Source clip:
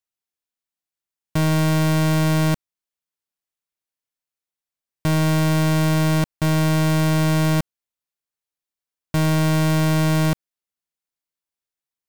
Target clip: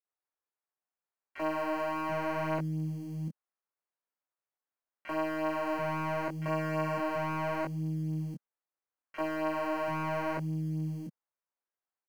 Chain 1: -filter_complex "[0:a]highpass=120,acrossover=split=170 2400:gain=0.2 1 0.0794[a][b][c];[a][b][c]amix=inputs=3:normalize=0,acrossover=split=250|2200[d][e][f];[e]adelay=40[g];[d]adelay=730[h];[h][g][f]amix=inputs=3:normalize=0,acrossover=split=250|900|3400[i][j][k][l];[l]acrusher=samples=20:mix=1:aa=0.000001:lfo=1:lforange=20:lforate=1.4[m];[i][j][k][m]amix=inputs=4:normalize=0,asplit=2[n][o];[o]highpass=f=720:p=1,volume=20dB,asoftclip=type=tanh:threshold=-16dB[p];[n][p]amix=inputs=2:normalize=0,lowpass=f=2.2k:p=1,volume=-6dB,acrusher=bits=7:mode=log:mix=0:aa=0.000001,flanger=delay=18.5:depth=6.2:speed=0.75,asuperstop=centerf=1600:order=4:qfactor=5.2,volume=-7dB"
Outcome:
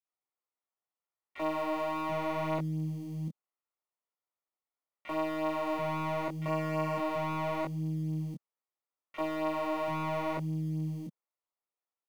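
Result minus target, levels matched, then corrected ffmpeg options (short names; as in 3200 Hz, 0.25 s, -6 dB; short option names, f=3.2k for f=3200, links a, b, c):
2000 Hz band -3.0 dB
-filter_complex "[0:a]highpass=120,acrossover=split=170 2400:gain=0.2 1 0.0794[a][b][c];[a][b][c]amix=inputs=3:normalize=0,acrossover=split=250|2200[d][e][f];[e]adelay=40[g];[d]adelay=730[h];[h][g][f]amix=inputs=3:normalize=0,acrossover=split=250|900|3400[i][j][k][l];[l]acrusher=samples=20:mix=1:aa=0.000001:lfo=1:lforange=20:lforate=1.4[m];[i][j][k][m]amix=inputs=4:normalize=0,asplit=2[n][o];[o]highpass=f=720:p=1,volume=20dB,asoftclip=type=tanh:threshold=-16dB[p];[n][p]amix=inputs=2:normalize=0,lowpass=f=2.2k:p=1,volume=-6dB,acrusher=bits=7:mode=log:mix=0:aa=0.000001,flanger=delay=18.5:depth=6.2:speed=0.75,asuperstop=centerf=3600:order=4:qfactor=5.2,volume=-7dB"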